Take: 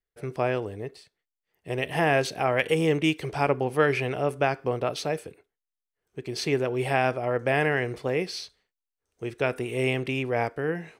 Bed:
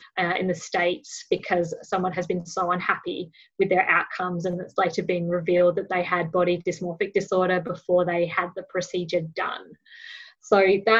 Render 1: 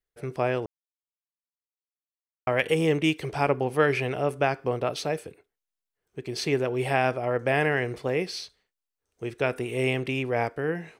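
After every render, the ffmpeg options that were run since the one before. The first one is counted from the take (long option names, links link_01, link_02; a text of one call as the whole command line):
ffmpeg -i in.wav -filter_complex "[0:a]asplit=3[link_01][link_02][link_03];[link_01]atrim=end=0.66,asetpts=PTS-STARTPTS,afade=type=out:start_time=0.656:duration=0.004:curve=hsin[link_04];[link_02]atrim=start=0.66:end=2.47,asetpts=PTS-STARTPTS,volume=0[link_05];[link_03]atrim=start=2.47,asetpts=PTS-STARTPTS,afade=type=in:duration=0.004:curve=hsin[link_06];[link_04][link_05][link_06]concat=n=3:v=0:a=1" out.wav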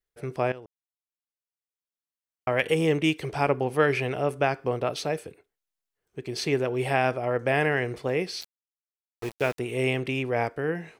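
ffmpeg -i in.wav -filter_complex "[0:a]asettb=1/sr,asplit=3[link_01][link_02][link_03];[link_01]atrim=end=8.414[link_04];[link_02]atrim=start=8.41:end=9.59,asetpts=PTS-STARTPTS,afade=type=in:duration=0.004:curve=qsin,afade=type=out:start_time=1.176:duration=0.004:curve=qsin,aeval=exprs='val(0)*gte(abs(val(0)),0.02)':channel_layout=same[link_05];[link_03]atrim=start=9.586[link_06];[link_04][link_05]acrossfade=duration=0.004:curve1=hsin:curve2=qsin[link_07];[link_07][link_06]acrossfade=duration=0.004:curve1=qsin:curve2=hsin,asplit=2[link_08][link_09];[link_08]atrim=end=0.52,asetpts=PTS-STARTPTS,afade=type=out:start_time=0.516:duration=0.004:curve=hsin:silence=0.177828[link_10];[link_09]atrim=start=0.52,asetpts=PTS-STARTPTS,afade=type=in:duration=2.11:silence=0.177828[link_11];[link_10][link_11]concat=n=2:v=0:a=1" out.wav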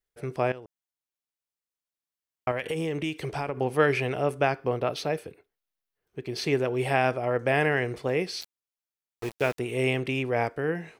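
ffmpeg -i in.wav -filter_complex "[0:a]asettb=1/sr,asplit=3[link_01][link_02][link_03];[link_01]atrim=end=2.514[link_04];[link_02]atrim=start=2.51:end=3.57,asetpts=PTS-STARTPTS,afade=type=in:duration=0.004:curve=qsin,afade=type=out:start_time=1.056:duration=0.004:curve=qsin,acompressor=threshold=-26dB:ratio=6:attack=3.2:release=140:knee=1:detection=peak[link_05];[link_03]atrim=start=3.566[link_06];[link_04][link_05]acrossfade=duration=0.004:curve1=hsin:curve2=qsin[link_07];[link_07][link_06]acrossfade=duration=0.004:curve1=qsin:curve2=hsin,asettb=1/sr,asplit=3[link_08][link_09][link_10];[link_08]atrim=end=4.514[link_11];[link_09]atrim=start=4.51:end=6.44,asetpts=PTS-STARTPTS,afade=type=in:duration=0.004:curve=qsin,afade=type=out:start_time=1.926:duration=0.004:curve=qsin,equalizer=frequency=7700:width=1.7:gain=-7[link_12];[link_10]atrim=start=6.436[link_13];[link_11][link_12]acrossfade=duration=0.004:curve1=hsin:curve2=qsin[link_14];[link_14][link_13]acrossfade=duration=0.004:curve1=qsin:curve2=hsin" out.wav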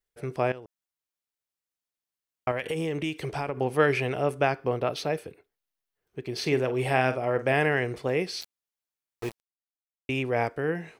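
ffmpeg -i in.wav -filter_complex "[0:a]asettb=1/sr,asplit=3[link_01][link_02][link_03];[link_01]atrim=end=6.354[link_04];[link_02]atrim=start=6.35:end=7.53,asetpts=PTS-STARTPTS,afade=type=in:duration=0.004:curve=qsin,afade=type=out:start_time=1.176:duration=0.004:curve=qsin,asplit=2[link_05][link_06];[link_06]adelay=46,volume=-12dB[link_07];[link_05][link_07]amix=inputs=2:normalize=0,atrim=end_sample=52038[link_08];[link_03]atrim=start=7.526[link_09];[link_04][link_08]acrossfade=duration=0.004:curve1=hsin:curve2=qsin[link_10];[link_10][link_09]acrossfade=duration=0.004:curve1=qsin:curve2=hsin,asplit=3[link_11][link_12][link_13];[link_11]atrim=end=9.4,asetpts=PTS-STARTPTS,afade=type=out:start_time=9.396:duration=0.004:curve=hsin[link_14];[link_12]atrim=start=9.4:end=10.09,asetpts=PTS-STARTPTS,volume=0[link_15];[link_13]atrim=start=10.09,asetpts=PTS-STARTPTS,afade=type=in:duration=0.004:curve=hsin[link_16];[link_14][link_15][link_16]concat=n=3:v=0:a=1" out.wav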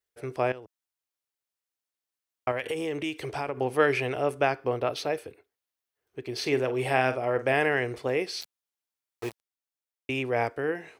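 ffmpeg -i in.wav -af "highpass=66,equalizer=frequency=170:width_type=o:width=0.48:gain=-12.5" out.wav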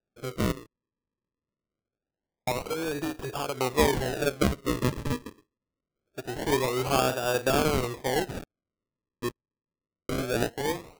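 ffmpeg -i in.wav -af "acrusher=samples=41:mix=1:aa=0.000001:lfo=1:lforange=41:lforate=0.24" out.wav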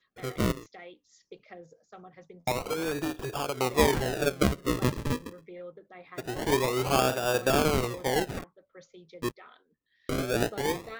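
ffmpeg -i in.wav -i bed.wav -filter_complex "[1:a]volume=-24dB[link_01];[0:a][link_01]amix=inputs=2:normalize=0" out.wav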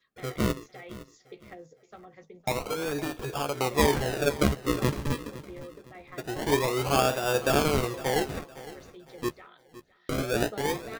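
ffmpeg -i in.wav -filter_complex "[0:a]asplit=2[link_01][link_02];[link_02]adelay=14,volume=-9dB[link_03];[link_01][link_03]amix=inputs=2:normalize=0,aecho=1:1:510|1020|1530:0.141|0.0466|0.0154" out.wav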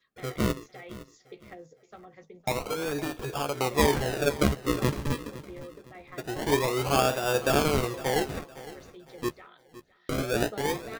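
ffmpeg -i in.wav -af anull out.wav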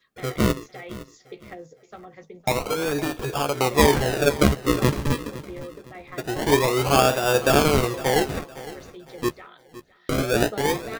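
ffmpeg -i in.wav -af "volume=6dB" out.wav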